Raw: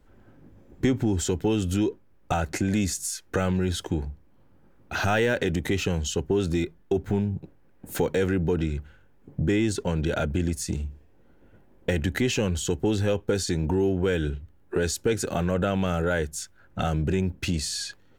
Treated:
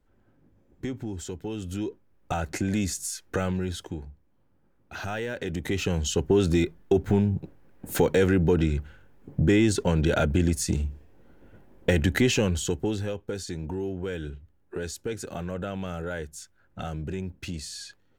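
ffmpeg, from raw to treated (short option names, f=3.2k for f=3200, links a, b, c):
-af "volume=10dB,afade=t=in:st=1.5:d=1.12:silence=0.398107,afade=t=out:st=3.37:d=0.64:silence=0.446684,afade=t=in:st=5.34:d=1:silence=0.251189,afade=t=out:st=12.2:d=0.93:silence=0.281838"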